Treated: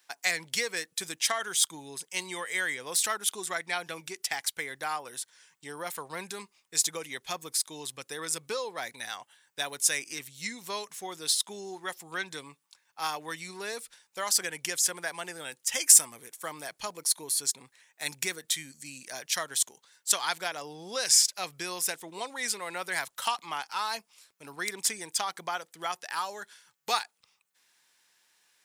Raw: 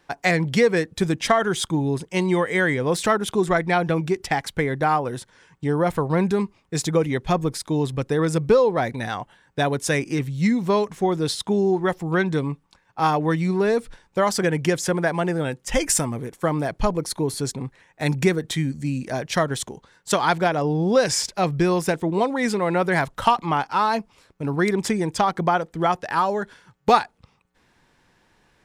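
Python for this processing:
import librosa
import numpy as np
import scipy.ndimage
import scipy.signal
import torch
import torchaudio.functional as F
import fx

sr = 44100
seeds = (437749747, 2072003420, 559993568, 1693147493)

y = np.diff(x, prepend=0.0)
y = y * librosa.db_to_amplitude(4.5)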